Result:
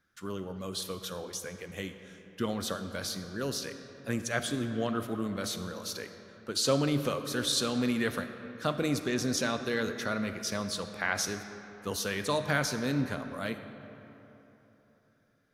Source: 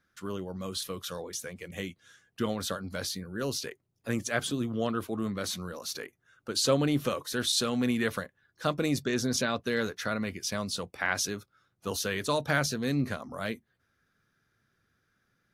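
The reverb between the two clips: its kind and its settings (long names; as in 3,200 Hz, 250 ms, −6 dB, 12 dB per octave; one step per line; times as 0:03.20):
comb and all-pass reverb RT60 3.5 s, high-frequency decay 0.55×, pre-delay 5 ms, DRR 8.5 dB
level −1.5 dB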